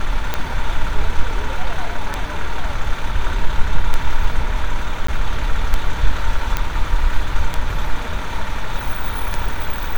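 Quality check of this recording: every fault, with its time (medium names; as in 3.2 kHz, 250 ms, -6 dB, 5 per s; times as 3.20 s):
tick 33 1/3 rpm -5 dBFS
5.07–5.08 s: dropout 14 ms
6.57 s: pop -5 dBFS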